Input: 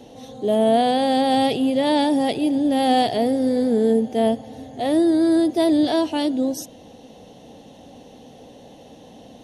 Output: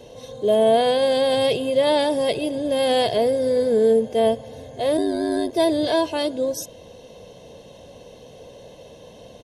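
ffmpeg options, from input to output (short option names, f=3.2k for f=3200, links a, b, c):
-filter_complex "[0:a]aecho=1:1:1.9:0.66,asplit=3[a][b][c];[a]afade=t=out:st=4.97:d=0.02[d];[b]aeval=exprs='val(0)*sin(2*PI*49*n/s)':c=same,afade=t=in:st=4.97:d=0.02,afade=t=out:st=5.51:d=0.02[e];[c]afade=t=in:st=5.51:d=0.02[f];[d][e][f]amix=inputs=3:normalize=0"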